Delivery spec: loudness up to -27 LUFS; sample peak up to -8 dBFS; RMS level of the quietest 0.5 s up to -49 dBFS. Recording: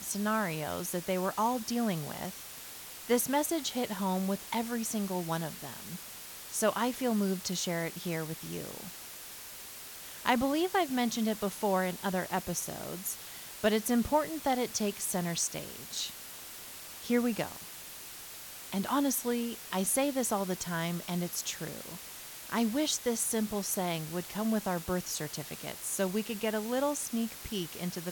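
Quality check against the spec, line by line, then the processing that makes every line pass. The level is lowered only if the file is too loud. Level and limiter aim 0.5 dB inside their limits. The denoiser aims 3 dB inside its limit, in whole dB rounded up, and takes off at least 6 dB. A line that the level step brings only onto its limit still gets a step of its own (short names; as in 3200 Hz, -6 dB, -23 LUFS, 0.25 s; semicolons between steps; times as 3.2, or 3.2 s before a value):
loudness -33.0 LUFS: OK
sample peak -12.0 dBFS: OK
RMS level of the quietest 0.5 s -46 dBFS: fail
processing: denoiser 6 dB, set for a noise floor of -46 dBFS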